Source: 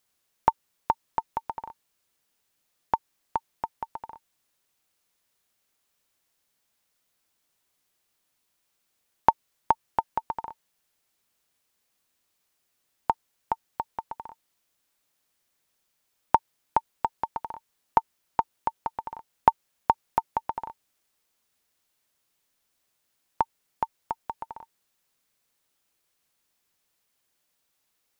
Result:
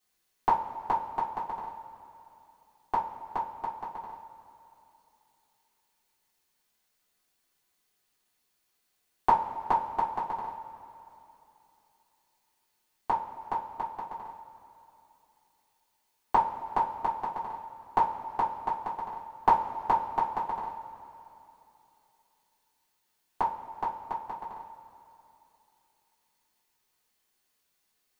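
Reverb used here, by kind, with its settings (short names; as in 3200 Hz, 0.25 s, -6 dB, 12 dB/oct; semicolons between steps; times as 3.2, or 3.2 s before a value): two-slope reverb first 0.26 s, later 3.1 s, from -19 dB, DRR -9.5 dB; gain -10 dB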